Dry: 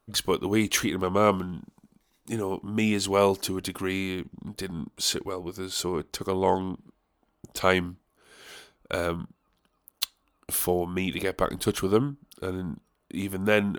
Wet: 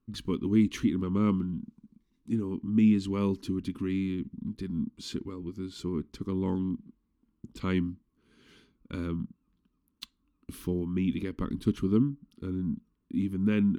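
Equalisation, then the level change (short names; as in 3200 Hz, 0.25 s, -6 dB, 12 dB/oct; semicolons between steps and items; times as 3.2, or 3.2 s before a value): EQ curve 160 Hz 0 dB, 240 Hz +6 dB, 430 Hz -10 dB, 710 Hz -29 dB, 1000 Hz -12 dB, 1500 Hz -15 dB, 2600 Hz -12 dB, 4700 Hz -15 dB, 14000 Hz -25 dB; 0.0 dB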